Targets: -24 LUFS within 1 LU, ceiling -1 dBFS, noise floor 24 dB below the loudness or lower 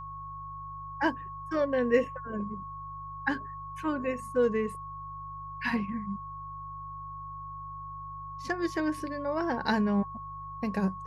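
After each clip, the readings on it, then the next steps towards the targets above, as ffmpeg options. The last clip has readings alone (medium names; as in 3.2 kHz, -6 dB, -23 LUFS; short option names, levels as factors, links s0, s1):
hum 50 Hz; highest harmonic 150 Hz; hum level -46 dBFS; steady tone 1.1 kHz; tone level -39 dBFS; loudness -33.0 LUFS; peak level -12.0 dBFS; loudness target -24.0 LUFS
-> -af "bandreject=f=50:t=h:w=4,bandreject=f=100:t=h:w=4,bandreject=f=150:t=h:w=4"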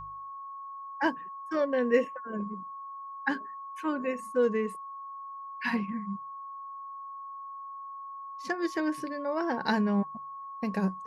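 hum not found; steady tone 1.1 kHz; tone level -39 dBFS
-> -af "bandreject=f=1100:w=30"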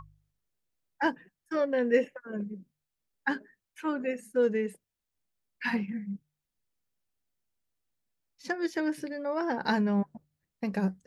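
steady tone not found; loudness -31.5 LUFS; peak level -12.0 dBFS; loudness target -24.0 LUFS
-> -af "volume=2.37"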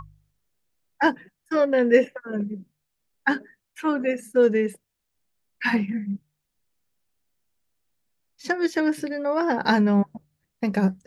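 loudness -24.0 LUFS; peak level -4.5 dBFS; noise floor -79 dBFS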